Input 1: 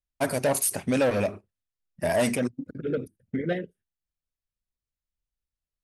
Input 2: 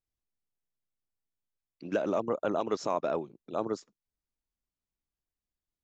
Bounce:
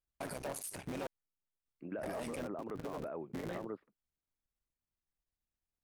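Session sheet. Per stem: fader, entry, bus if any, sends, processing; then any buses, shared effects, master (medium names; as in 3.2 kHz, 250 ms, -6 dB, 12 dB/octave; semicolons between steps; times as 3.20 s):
-5.0 dB, 0.00 s, muted 1.07–1.65 s, no send, cycle switcher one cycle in 3, muted; peak limiter -19.5 dBFS, peak gain reduction 6 dB
-4.5 dB, 0.00 s, no send, inverse Chebyshev low-pass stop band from 5.7 kHz, stop band 50 dB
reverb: none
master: peak limiter -32.5 dBFS, peak gain reduction 13.5 dB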